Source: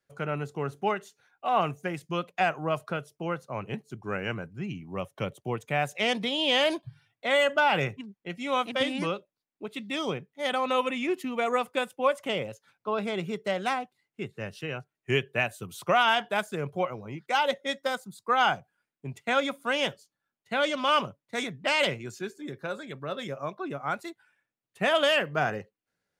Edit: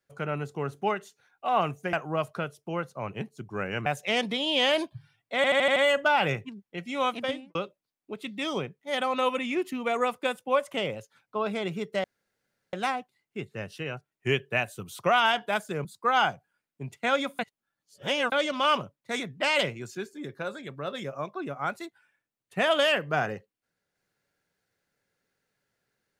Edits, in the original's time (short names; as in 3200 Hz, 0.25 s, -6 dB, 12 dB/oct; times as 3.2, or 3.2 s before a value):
1.93–2.46 cut
4.39–5.78 cut
7.28 stutter 0.08 s, 6 plays
8.68–9.07 studio fade out
13.56 insert room tone 0.69 s
16.68–18.09 cut
19.63–20.56 reverse